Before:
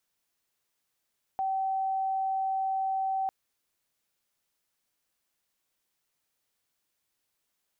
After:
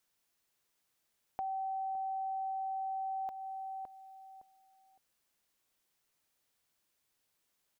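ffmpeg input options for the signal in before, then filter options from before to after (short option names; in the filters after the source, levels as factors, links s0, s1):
-f lavfi -i "sine=f=769:d=1.9:r=44100,volume=-8.44dB"
-filter_complex "[0:a]asplit=2[s0][s1];[s1]adelay=562,lowpass=f=850:p=1,volume=0.447,asplit=2[s2][s3];[s3]adelay=562,lowpass=f=850:p=1,volume=0.27,asplit=2[s4][s5];[s5]adelay=562,lowpass=f=850:p=1,volume=0.27[s6];[s2][s4][s6]amix=inputs=3:normalize=0[s7];[s0][s7]amix=inputs=2:normalize=0,acompressor=threshold=0.00794:ratio=2"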